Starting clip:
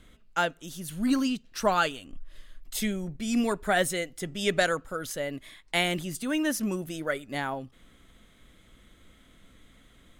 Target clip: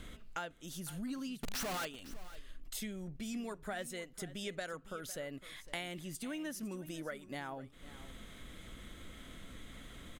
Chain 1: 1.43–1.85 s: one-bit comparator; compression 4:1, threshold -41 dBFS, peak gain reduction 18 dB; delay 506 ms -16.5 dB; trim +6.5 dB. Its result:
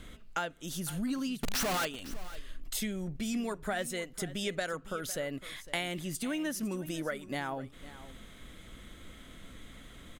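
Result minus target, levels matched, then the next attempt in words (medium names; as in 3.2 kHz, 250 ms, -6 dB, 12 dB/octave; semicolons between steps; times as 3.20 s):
compression: peak gain reduction -7 dB
1.43–1.85 s: one-bit comparator; compression 4:1, threshold -50.5 dBFS, peak gain reduction 25 dB; delay 506 ms -16.5 dB; trim +6.5 dB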